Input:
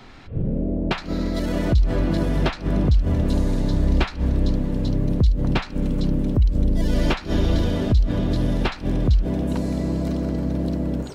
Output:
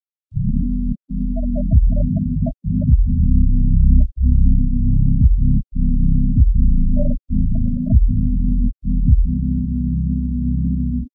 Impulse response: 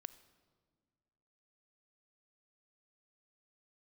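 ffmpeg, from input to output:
-filter_complex "[0:a]asplit=2[s0][s1];[s1]adelay=29,volume=0.708[s2];[s0][s2]amix=inputs=2:normalize=0,asplit=2[s3][s4];[s4]adelay=99.13,volume=0.112,highshelf=f=4000:g=-2.23[s5];[s3][s5]amix=inputs=2:normalize=0,afftfilt=real='re*gte(hypot(re,im),0.398)':imag='im*gte(hypot(re,im),0.398)':win_size=1024:overlap=0.75,acrossover=split=390[s6][s7];[s7]aexciter=amount=15.3:drive=7.8:freq=2800[s8];[s6][s8]amix=inputs=2:normalize=0,afftfilt=real='re*eq(mod(floor(b*sr/1024/260),2),0)':imag='im*eq(mod(floor(b*sr/1024/260),2),0)':win_size=1024:overlap=0.75,volume=1.58"

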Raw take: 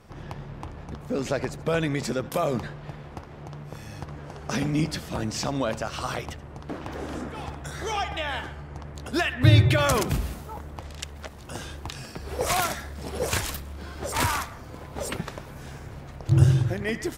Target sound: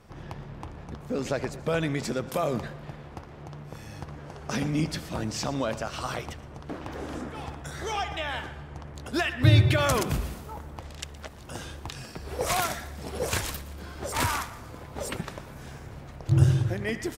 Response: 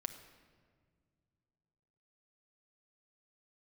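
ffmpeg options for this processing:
-af "aecho=1:1:118|236|354|472|590:0.119|0.0654|0.036|0.0198|0.0109,volume=0.794"

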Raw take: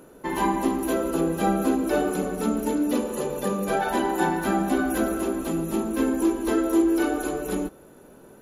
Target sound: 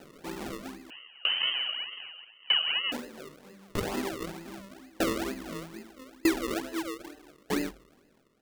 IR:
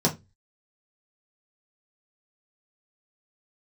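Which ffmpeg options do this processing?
-filter_complex "[0:a]tiltshelf=f=690:g=8,asoftclip=type=tanh:threshold=0.266,flanger=delay=19.5:depth=5.8:speed=1.5,acrusher=samples=38:mix=1:aa=0.000001:lfo=1:lforange=38:lforate=2.2,bandreject=f=47.8:t=h:w=4,bandreject=f=95.6:t=h:w=4,bandreject=f=143.4:t=h:w=4,asettb=1/sr,asplit=3[s0][s1][s2];[s0]atrim=end=0.904[s3];[s1]atrim=start=0.9:end=2.92,asetpts=PTS-STARTPTS,afade=t=in:d=0.004:c=qsin,afade=t=out:st=2.016:d=0.004:c=qsin,lowpass=f=2700:t=q:w=0.5098,lowpass=f=2700:t=q:w=0.6013,lowpass=f=2700:t=q:w=0.9,lowpass=f=2700:t=q:w=2.563,afreqshift=-3200[s4];[s2]atrim=start=2.916[s5];[s3][s4]acrossfade=d=0.004:c1=hsin:c2=qsin[s6];[s6][s5]acrossfade=d=0.004:c1=qsin:c2=hsin,lowshelf=f=260:g=-4.5,aeval=exprs='val(0)*pow(10,-30*if(lt(mod(0.8*n/s,1),2*abs(0.8)/1000),1-mod(0.8*n/s,1)/(2*abs(0.8)/1000),(mod(0.8*n/s,1)-2*abs(0.8)/1000)/(1-2*abs(0.8)/1000))/20)':c=same"

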